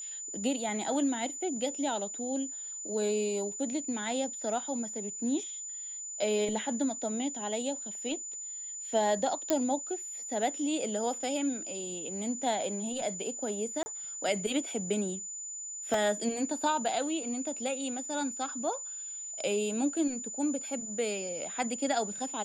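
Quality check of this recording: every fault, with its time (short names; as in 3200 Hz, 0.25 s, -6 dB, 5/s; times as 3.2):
tone 7000 Hz -38 dBFS
9.5 pop -12 dBFS
13.83–13.86 gap 30 ms
15.94 gap 2.5 ms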